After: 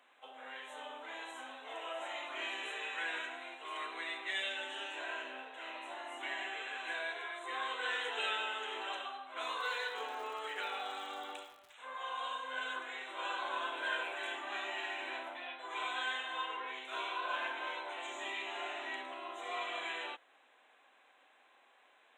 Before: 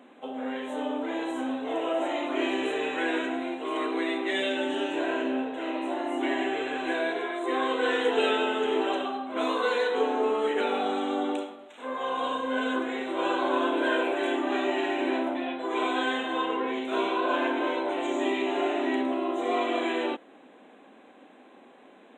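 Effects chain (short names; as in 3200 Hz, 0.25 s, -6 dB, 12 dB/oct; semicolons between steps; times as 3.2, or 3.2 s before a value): HPF 1100 Hz 12 dB/oct; 9.59–11.72 crackle 200/s -43 dBFS; gain -5.5 dB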